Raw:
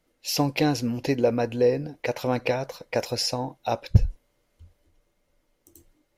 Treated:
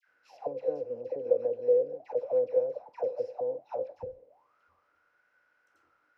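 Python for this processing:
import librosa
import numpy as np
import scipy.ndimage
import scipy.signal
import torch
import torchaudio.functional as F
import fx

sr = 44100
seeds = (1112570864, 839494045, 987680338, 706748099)

y = fx.bin_compress(x, sr, power=0.6)
y = fx.dispersion(y, sr, late='lows', ms=80.0, hz=1200.0)
y = fx.auto_wah(y, sr, base_hz=510.0, top_hz=1600.0, q=15.0, full_db=-19.5, direction='down')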